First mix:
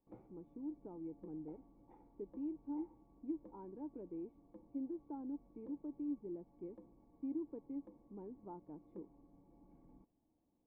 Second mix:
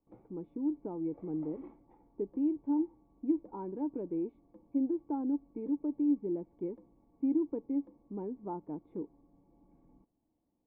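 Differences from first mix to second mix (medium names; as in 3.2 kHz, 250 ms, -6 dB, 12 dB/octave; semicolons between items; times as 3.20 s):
speech +10.0 dB; second sound: unmuted; reverb: on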